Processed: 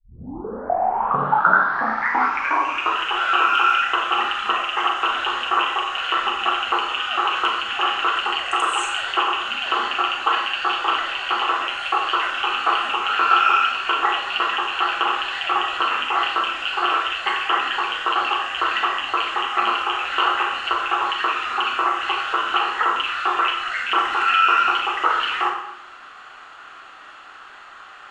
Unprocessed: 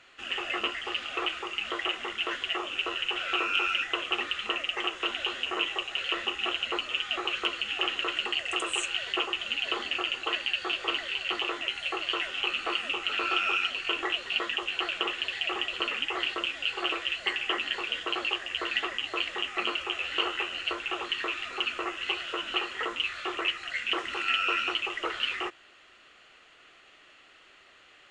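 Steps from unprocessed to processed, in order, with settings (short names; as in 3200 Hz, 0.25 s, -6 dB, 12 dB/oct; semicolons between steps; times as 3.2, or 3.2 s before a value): tape start at the beginning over 3.00 s; Schroeder reverb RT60 0.66 s, combs from 28 ms, DRR 2 dB; in parallel at -2.5 dB: compressor, threshold -40 dBFS, peak gain reduction 17.5 dB; on the sum: band shelf 1100 Hz +12.5 dB 1.3 oct; gain +1 dB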